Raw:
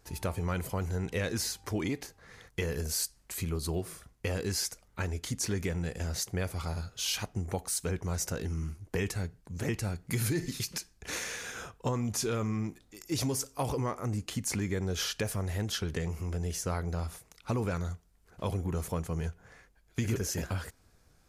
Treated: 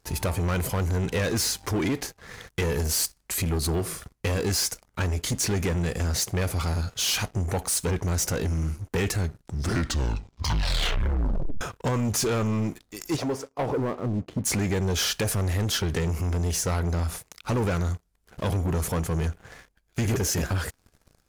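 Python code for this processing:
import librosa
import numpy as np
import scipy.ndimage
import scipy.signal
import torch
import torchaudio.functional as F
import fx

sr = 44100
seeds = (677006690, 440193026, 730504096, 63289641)

y = fx.bandpass_q(x, sr, hz=fx.line((13.15, 800.0), (14.44, 170.0)), q=0.73, at=(13.15, 14.44), fade=0.02)
y = fx.edit(y, sr, fx.tape_stop(start_s=9.16, length_s=2.45), tone=tone)
y = fx.leveller(y, sr, passes=3)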